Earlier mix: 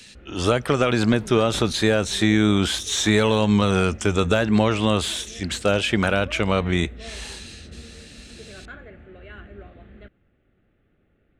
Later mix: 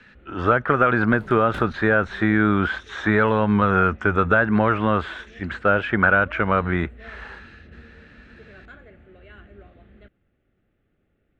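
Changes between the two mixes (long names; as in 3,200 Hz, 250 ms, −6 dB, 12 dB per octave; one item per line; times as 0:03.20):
speech: add low-pass with resonance 1,500 Hz, resonance Q 3.6
first sound −4.5 dB
reverb: off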